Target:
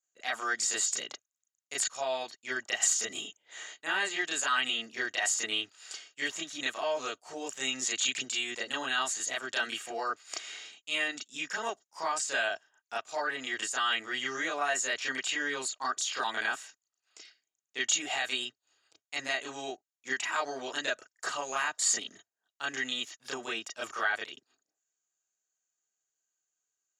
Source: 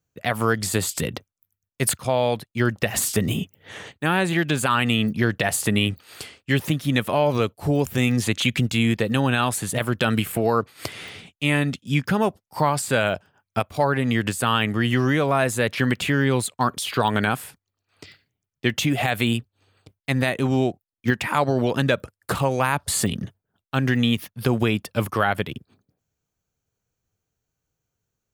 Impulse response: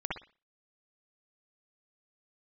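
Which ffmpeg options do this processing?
-filter_complex "[0:a]highpass=680,asetrate=46305,aresample=44100,lowpass=frequency=7000:width_type=q:width=9.4[link_01];[1:a]atrim=start_sample=2205,atrim=end_sample=3528,asetrate=88200,aresample=44100[link_02];[link_01][link_02]afir=irnorm=-1:irlink=0,volume=-6dB"

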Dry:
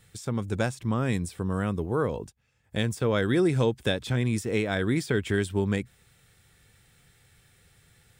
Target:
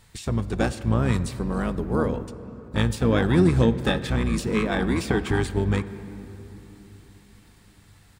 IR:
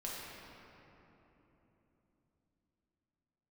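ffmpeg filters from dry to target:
-filter_complex "[0:a]asplit=3[link_01][link_02][link_03];[link_02]asetrate=22050,aresample=44100,atempo=2,volume=-2dB[link_04];[link_03]asetrate=33038,aresample=44100,atempo=1.33484,volume=-10dB[link_05];[link_01][link_04][link_05]amix=inputs=3:normalize=0,asplit=2[link_06][link_07];[1:a]atrim=start_sample=2205[link_08];[link_07][link_08]afir=irnorm=-1:irlink=0,volume=-12dB[link_09];[link_06][link_09]amix=inputs=2:normalize=0"

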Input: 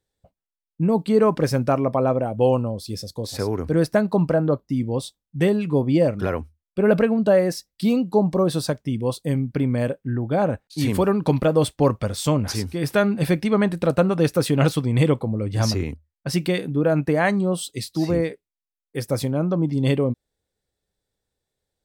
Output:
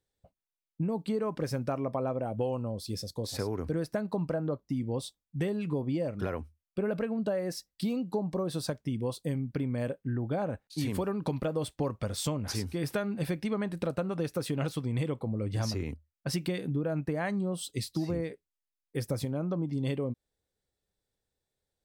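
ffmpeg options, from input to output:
ffmpeg -i in.wav -filter_complex "[0:a]asettb=1/sr,asplit=3[link_01][link_02][link_03];[link_01]atrim=end=16.474[link_04];[link_02]atrim=start=16.47:end=19.25,asetpts=PTS-STARTPTS,afade=type=in:duration=0.004:curve=qsin,afade=type=out:start_time=2.776:duration=0.004:curve=qsin,lowshelf=frequency=190:gain=5.5[link_05];[link_03]atrim=start=19.246[link_06];[link_04][link_05]acrossfade=duration=0.004:curve1=hsin:curve2=qsin[link_07];[link_07][link_06]acrossfade=duration=0.004:curve1=qsin:curve2=hsin,acompressor=threshold=-23dB:ratio=6,volume=-5dB" out.wav

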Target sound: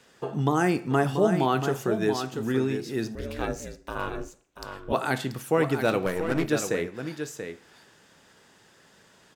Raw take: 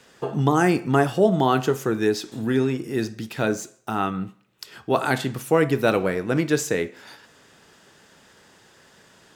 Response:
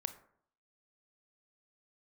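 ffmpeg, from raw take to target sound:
-filter_complex "[0:a]aecho=1:1:684:0.398,asettb=1/sr,asplit=3[link_01][link_02][link_03];[link_01]atrim=end=3.154[link_04];[link_02]atrim=start=3.15:end=4.93,asetpts=PTS-STARTPTS,afade=type=in:duration=0.004:curve=qsin,afade=type=out:start_time=1.776:duration=0.004:curve=qsin,aeval=exprs='val(0)*sin(2*PI*170*n/s)':channel_layout=same[link_05];[link_03]atrim=start=4.926[link_06];[link_04][link_05]acrossfade=duration=0.004:curve1=hsin:curve2=qsin[link_07];[link_07][link_06]acrossfade=duration=0.004:curve1=qsin:curve2=hsin,asettb=1/sr,asplit=3[link_08][link_09][link_10];[link_08]atrim=end=6.064[link_11];[link_09]atrim=start=6.06:end=6.5,asetpts=PTS-STARTPTS,afade=type=in:duration=0.004:curve=qsin,afade=type=out:start_time=0.436:duration=0.004:curve=qsin,aeval=exprs='0.422*(cos(1*acos(clip(val(0)/0.422,-1,1)))-cos(1*PI/2))+0.0335*(cos(8*acos(clip(val(0)/0.422,-1,1)))-cos(8*PI/2))':channel_layout=same[link_12];[link_10]atrim=start=6.496[link_13];[link_11][link_12]acrossfade=duration=0.004:curve1=hsin:curve2=qsin[link_14];[link_14][link_13]acrossfade=duration=0.004:curve1=qsin:curve2=hsin,volume=-4.5dB"

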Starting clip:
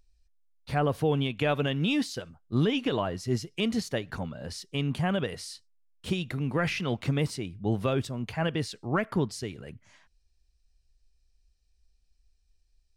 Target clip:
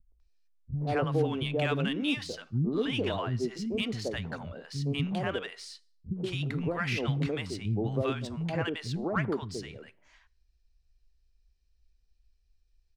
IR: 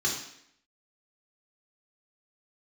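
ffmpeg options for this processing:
-filter_complex "[0:a]acrossover=split=230|780[link_01][link_02][link_03];[link_02]adelay=120[link_04];[link_03]adelay=200[link_05];[link_01][link_04][link_05]amix=inputs=3:normalize=0,asplit=2[link_06][link_07];[1:a]atrim=start_sample=2205,asetrate=61740,aresample=44100[link_08];[link_07][link_08]afir=irnorm=-1:irlink=0,volume=-25dB[link_09];[link_06][link_09]amix=inputs=2:normalize=0,adynamicsmooth=sensitivity=5:basefreq=5900"

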